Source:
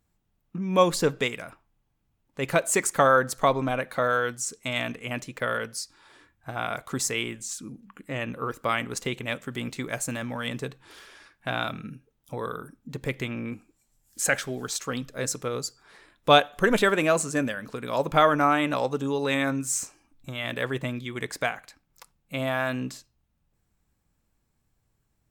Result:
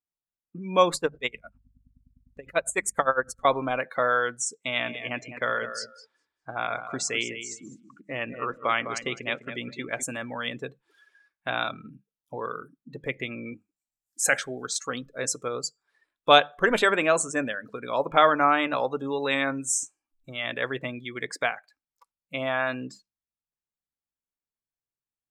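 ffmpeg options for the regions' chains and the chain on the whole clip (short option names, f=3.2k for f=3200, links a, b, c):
-filter_complex "[0:a]asettb=1/sr,asplit=3[a][b][c];[a]atrim=end=0.954[d];[b]atrim=start=0.95:end=3.45,asetpts=PTS-STARTPTS,afade=t=in:d=0.004:c=qsin,afade=t=out:st=2.496:d=0.004:c=qsin,aeval=exprs='val(0)+0.0112*(sin(2*PI*50*n/s)+sin(2*PI*2*50*n/s)/2+sin(2*PI*3*50*n/s)/3+sin(2*PI*4*50*n/s)/4+sin(2*PI*5*50*n/s)/5)':c=same,aeval=exprs='val(0)*pow(10,-22*(0.5-0.5*cos(2*PI*9.8*n/s))/20)':c=same[e];[c]atrim=start=3.446[f];[d][e]acrossfade=d=0.004:c1=hsin:c2=qsin[g];[g][f]acrossfade=d=0.004:c1=qsin:c2=hsin,asettb=1/sr,asplit=3[h][i][j];[h]atrim=end=4.534[k];[i]atrim=start=4.53:end=10.03,asetpts=PTS-STARTPTS,afade=t=in:d=0.004:c=qsin,afade=t=out:st=5.496:d=0.004:c=qsin,lowpass=6.8k,aecho=1:1:205|410|615:0.335|0.0904|0.0244,atrim=end_sample=242550[l];[j]atrim=start=10.026[m];[k][l]acrossfade=d=0.004:c1=hsin:c2=qsin[n];[n][m]acrossfade=d=0.004:c1=qsin:c2=hsin,bandreject=f=50:t=h:w=6,bandreject=f=100:t=h:w=6,bandreject=f=150:t=h:w=6,bandreject=f=200:t=h:w=6,afftdn=nr=24:nf=-39,lowshelf=f=250:g=-12,volume=2dB"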